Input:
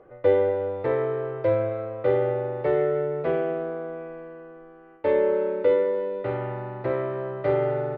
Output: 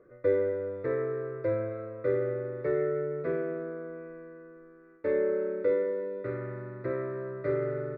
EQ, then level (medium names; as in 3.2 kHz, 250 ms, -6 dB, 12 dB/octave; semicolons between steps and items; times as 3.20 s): bass shelf 150 Hz -9 dB; treble shelf 2.2 kHz -11.5 dB; static phaser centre 3 kHz, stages 6; 0.0 dB